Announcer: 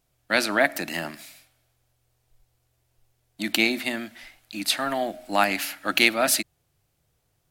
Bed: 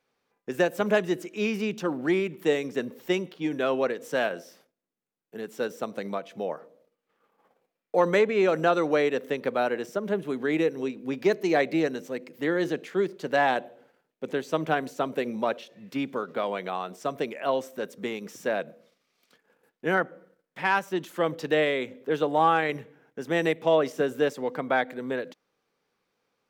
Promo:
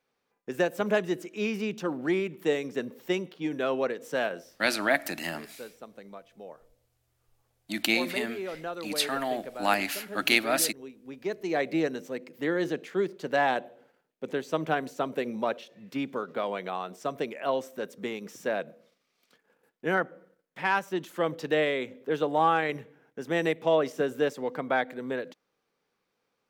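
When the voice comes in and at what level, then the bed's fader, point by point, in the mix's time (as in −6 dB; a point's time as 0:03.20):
4.30 s, −4.0 dB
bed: 0:04.37 −2.5 dB
0:04.94 −13.5 dB
0:11.01 −13.5 dB
0:11.76 −2 dB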